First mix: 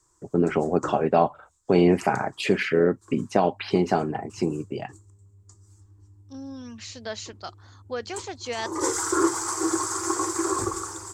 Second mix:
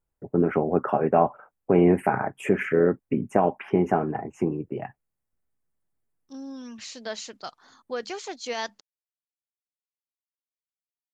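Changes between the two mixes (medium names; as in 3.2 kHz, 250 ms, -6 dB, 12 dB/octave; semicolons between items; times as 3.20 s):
first voice: add Butterworth band-stop 4.3 kHz, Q 0.71; background: muted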